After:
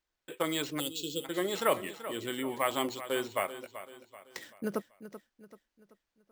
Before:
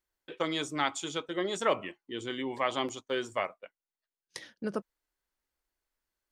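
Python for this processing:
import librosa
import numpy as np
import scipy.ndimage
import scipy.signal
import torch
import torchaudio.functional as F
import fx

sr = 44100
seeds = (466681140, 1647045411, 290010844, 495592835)

y = np.repeat(x[::4], 4)[:len(x)]
y = fx.echo_feedback(y, sr, ms=384, feedback_pct=43, wet_db=-13.0)
y = fx.spec_box(y, sr, start_s=0.79, length_s=0.46, low_hz=570.0, high_hz=2500.0, gain_db=-27)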